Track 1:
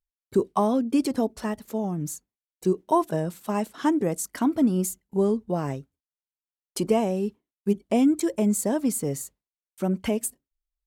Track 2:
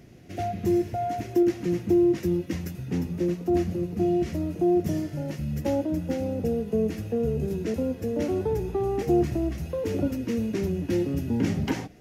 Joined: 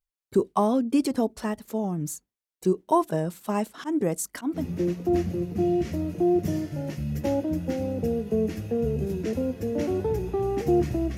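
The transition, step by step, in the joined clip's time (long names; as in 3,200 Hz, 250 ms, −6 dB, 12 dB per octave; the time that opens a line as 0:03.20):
track 1
0:03.54–0:04.65: volume swells 121 ms
0:04.59: continue with track 2 from 0:03.00, crossfade 0.12 s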